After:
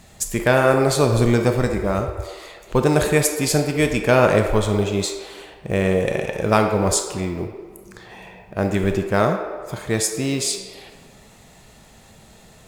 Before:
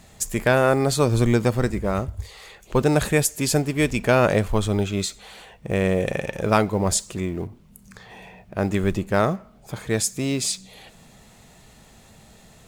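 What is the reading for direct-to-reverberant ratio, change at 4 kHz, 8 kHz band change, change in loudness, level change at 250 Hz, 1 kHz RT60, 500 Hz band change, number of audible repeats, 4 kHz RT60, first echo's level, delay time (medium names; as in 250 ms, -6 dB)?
4.5 dB, +2.5 dB, +2.0 dB, +2.5 dB, +1.5 dB, 1.7 s, +3.5 dB, no echo, 0.95 s, no echo, no echo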